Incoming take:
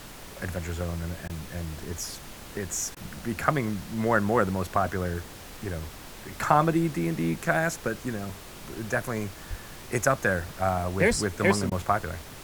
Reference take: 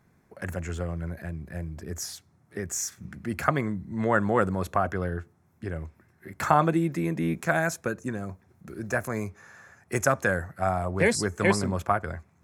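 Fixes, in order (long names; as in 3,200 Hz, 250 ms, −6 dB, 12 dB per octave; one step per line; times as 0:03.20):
0:09.49–0:09.61: high-pass filter 140 Hz 24 dB per octave
0:11.09–0:11.21: high-pass filter 140 Hz 24 dB per octave
repair the gap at 0:01.28/0:02.95/0:11.70, 14 ms
noise reduction from a noise print 18 dB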